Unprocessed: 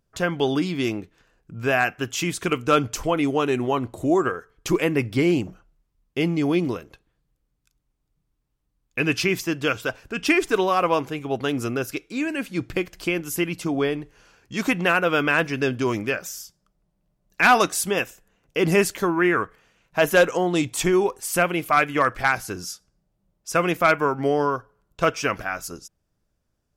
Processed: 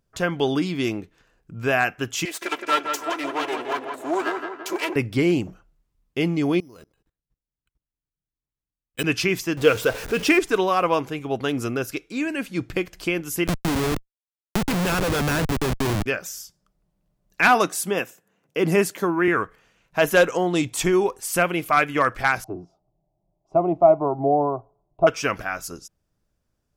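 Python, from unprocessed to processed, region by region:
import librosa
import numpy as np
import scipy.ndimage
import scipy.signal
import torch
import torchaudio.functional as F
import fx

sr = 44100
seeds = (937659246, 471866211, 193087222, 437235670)

y = fx.chain(x, sr, fx.lower_of_two(delay_ms=3.0),
    fx.highpass(hz=460.0, slope=12),
    fx.echo_filtered(ms=167, feedback_pct=52, hz=2800.0, wet_db=-5.5), at=(2.25, 4.96))
y = fx.chain(y, sr, fx.level_steps(step_db=23),
    fx.resample_bad(factor=8, down='filtered', up='hold'), at=(6.6, 9.04))
y = fx.chain(y, sr, fx.zero_step(step_db=-30.0),
    fx.peak_eq(hz=470.0, db=10.5, octaves=0.34), at=(9.57, 10.39))
y = fx.chain(y, sr, fx.low_shelf(hz=130.0, db=11.5),
    fx.schmitt(flips_db=-24.0),
    fx.band_squash(depth_pct=70), at=(13.47, 16.06))
y = fx.chain(y, sr, fx.highpass(hz=130.0, slope=24),
    fx.peak_eq(hz=4200.0, db=-4.0, octaves=2.5), at=(17.48, 19.28))
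y = fx.chain(y, sr, fx.lowpass_res(hz=670.0, q=3.5),
    fx.fixed_phaser(hz=330.0, stages=8), at=(22.44, 25.07))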